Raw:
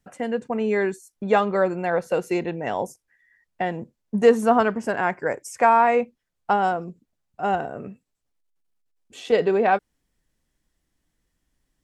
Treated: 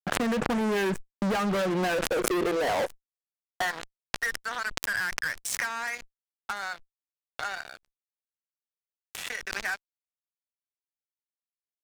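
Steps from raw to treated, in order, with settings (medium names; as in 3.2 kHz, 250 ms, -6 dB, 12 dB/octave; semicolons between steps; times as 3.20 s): gate with hold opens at -38 dBFS; resonant high shelf 2.2 kHz -10 dB, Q 3; compression 20:1, threshold -24 dBFS, peak gain reduction 16 dB; feedback echo behind a high-pass 1107 ms, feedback 64%, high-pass 2.6 kHz, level -19 dB; high-pass sweep 150 Hz -> 2.5 kHz, 1.34–4.57 s; fuzz box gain 36 dB, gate -45 dBFS; swell ahead of each attack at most 27 dB/s; trim -11.5 dB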